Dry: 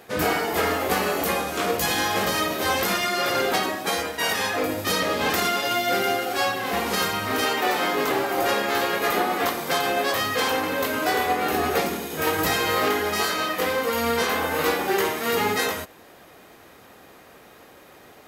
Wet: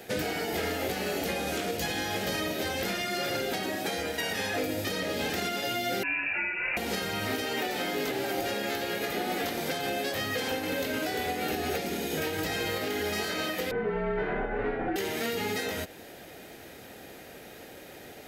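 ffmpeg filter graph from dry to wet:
-filter_complex "[0:a]asettb=1/sr,asplit=3[a][b][c];[a]atrim=end=6.034[d];[b]atrim=start=6.03:end=6.77,asetpts=PTS-STARTPTS,afade=t=in:d=0.004:c=qsin,afade=t=out:st=0.736:d=0.004:c=qsin,highpass=520,lowpass=f=2.6k:t=q:w=0.5098,lowpass=f=2.6k:t=q:w=0.6013,lowpass=f=2.6k:t=q:w=0.9,lowpass=f=2.6k:t=q:w=2.563,afreqshift=-3100[e];[c]atrim=start=6.766[f];[d][e]acrossfade=d=0.004:c1=hsin:c2=qsin[g];[g][f]acrossfade=d=0.004:c1=qsin:c2=hsin,asettb=1/sr,asplit=3[h][i][j];[h]atrim=end=13.714[k];[i]atrim=start=13.71:end=14.96,asetpts=PTS-STARTPTS,afade=t=in:d=0.004:c=qsin,afade=t=out:st=1.246:d=0.004:c=qsin,lowpass=f=1.8k:w=0.5412,lowpass=f=1.8k:w=1.3066,afreqshift=-50,asubboost=boost=10:cutoff=61[l];[j]atrim=start=14.956[m];[k][l]acrossfade=d=0.004:c1=hsin:c2=qsin[n];[n][m]acrossfade=d=0.004:c1=qsin:c2=hsin,equalizer=f=1.1k:w=3.1:g=-14.5,acrossover=split=260|2700|6400[o][p][q][r];[o]acompressor=threshold=-36dB:ratio=4[s];[p]acompressor=threshold=-30dB:ratio=4[t];[q]acompressor=threshold=-38dB:ratio=4[u];[r]acompressor=threshold=-43dB:ratio=4[v];[s][t][u][v]amix=inputs=4:normalize=0,alimiter=level_in=0.5dB:limit=-24dB:level=0:latency=1:release=346,volume=-0.5dB,volume=3.5dB"

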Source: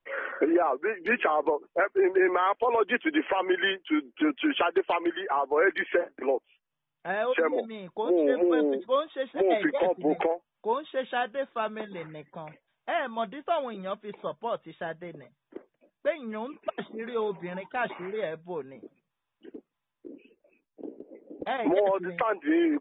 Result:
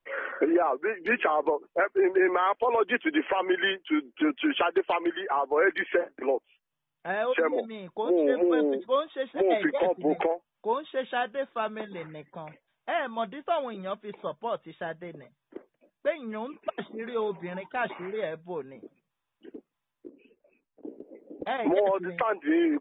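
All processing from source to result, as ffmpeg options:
-filter_complex "[0:a]asettb=1/sr,asplit=3[a][b][c];[a]atrim=end=20.094[d];[b]atrim=start=20.09:end=20.85,asetpts=PTS-STARTPTS,afade=t=in:d=0.004:c=qsin,afade=t=out:st=0.756:d=0.004:c=qsin,lowpass=3k,acompressor=threshold=-50dB:ratio=10:attack=3.2:release=140:knee=1:detection=peak,bandreject=f=330:w=8.7[e];[c]atrim=start=20.846[f];[d][e]acrossfade=d=0.004:c1=hsin:c2=qsin[g];[g][f]acrossfade=d=0.004:c1=qsin:c2=hsin"

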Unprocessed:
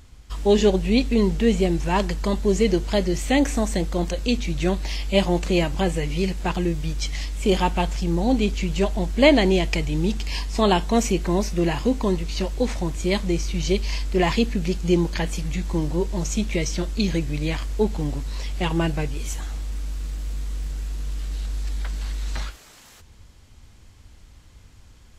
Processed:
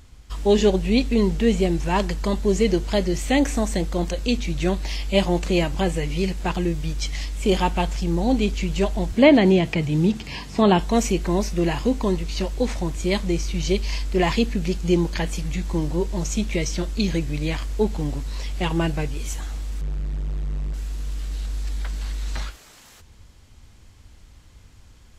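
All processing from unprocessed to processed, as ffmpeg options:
-filter_complex "[0:a]asettb=1/sr,asplit=3[a][b][c];[a]atrim=end=9.124[d];[b]atrim=start=9.12:end=10.79,asetpts=PTS-STARTPTS,afade=t=in:d=0.004:c=qsin,afade=t=out:st=1.666:d=0.004:c=qsin,highpass=f=91:w=0.5412,highpass=f=91:w=1.3066,lowshelf=f=200:g=9.5,acrossover=split=3500[e][f];[f]acompressor=threshold=-42dB:ratio=4:attack=1:release=60[g];[e][g]amix=inputs=2:normalize=0[h];[c]atrim=start=10.786[i];[d][h]acrossfade=d=0.004:c1=hsin:c2=qsin[j];[j][i]acrossfade=d=0.004:c1=qsin:c2=hsin,asettb=1/sr,asplit=3[k][l][m];[k]atrim=end=19.814[n];[l]atrim=start=19.81:end=20.74,asetpts=PTS-STARTPTS,afade=t=in:d=0.004:c=qsin,afade=t=out:st=0.926:d=0.004:c=qsin,lowpass=f=1.4k:p=1,acontrast=73,asoftclip=type=hard:threshold=-24dB[o];[m]atrim=start=20.736[p];[n][o]acrossfade=d=0.004:c1=hsin:c2=qsin[q];[q][p]acrossfade=d=0.004:c1=qsin:c2=hsin"

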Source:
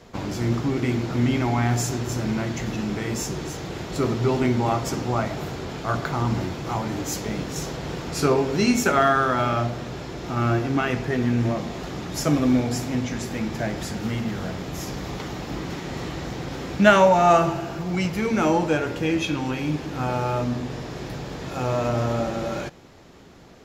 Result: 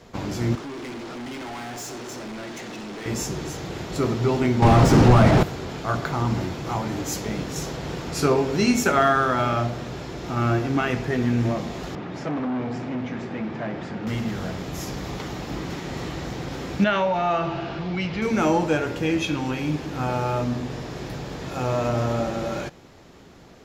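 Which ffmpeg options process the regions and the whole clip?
-filter_complex "[0:a]asettb=1/sr,asplit=3[a][b][c];[a]atrim=end=0.554[d];[b]atrim=start=0.55:end=3.06,asetpts=PTS-STARTPTS,afade=t=in:d=0.004:c=qsin,afade=t=out:st=2.506:d=0.004:c=qsin,highpass=290,lowpass=7.7k,volume=32.5dB,asoftclip=hard,volume=-32.5dB[e];[c]atrim=start=3.056[f];[d][e]acrossfade=d=0.004:c1=hsin:c2=qsin[g];[g][f]acrossfade=d=0.004:c1=qsin:c2=hsin,asettb=1/sr,asplit=3[h][i][j];[h]atrim=end=4.624[k];[i]atrim=start=4.62:end=5.43,asetpts=PTS-STARTPTS,afade=t=in:d=0.004:c=qsin,afade=t=out:st=0.806:d=0.004:c=qsin,asplit=2[l][m];[m]highpass=f=720:p=1,volume=30dB,asoftclip=type=tanh:threshold=-10.5dB[n];[l][n]amix=inputs=2:normalize=0,lowpass=f=1.1k:p=1,volume=-6dB,bass=f=250:g=15,treble=f=4k:g=4[o];[j]atrim=start=5.426[p];[k][o]acrossfade=d=0.004:c1=hsin:c2=qsin[q];[q][p]acrossfade=d=0.004:c1=qsin:c2=hsin,asettb=1/sr,asplit=3[r][s][t];[r]atrim=end=11.954[u];[s]atrim=start=11.95:end=14.07,asetpts=PTS-STARTPTS,afade=t=in:d=0.004:c=qsin,afade=t=out:st=2.116:d=0.004:c=qsin,asoftclip=type=hard:threshold=-24dB,highpass=130,lowpass=2.4k[v];[t]atrim=start=14.066[w];[u][v]acrossfade=d=0.004:c1=hsin:c2=qsin[x];[x][w]acrossfade=d=0.004:c1=qsin:c2=hsin,asettb=1/sr,asplit=3[y][z][aa];[y]atrim=end=16.844[ab];[z]atrim=start=16.84:end=18.22,asetpts=PTS-STARTPTS,afade=t=in:d=0.004:c=qsin,afade=t=out:st=1.376:d=0.004:c=qsin,lowpass=f=3.8k:w=0.5412,lowpass=f=3.8k:w=1.3066,acompressor=threshold=-25dB:ratio=2:attack=3.2:release=140:knee=1:detection=peak,aemphasis=mode=production:type=75kf[ac];[aa]atrim=start=18.216[ad];[ab][ac]acrossfade=d=0.004:c1=hsin:c2=qsin[ae];[ae][ad]acrossfade=d=0.004:c1=qsin:c2=hsin"

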